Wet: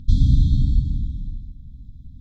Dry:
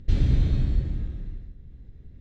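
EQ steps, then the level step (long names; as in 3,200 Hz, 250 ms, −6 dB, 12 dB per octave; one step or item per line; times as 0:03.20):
linear-phase brick-wall band-stop 300–3,200 Hz
+5.5 dB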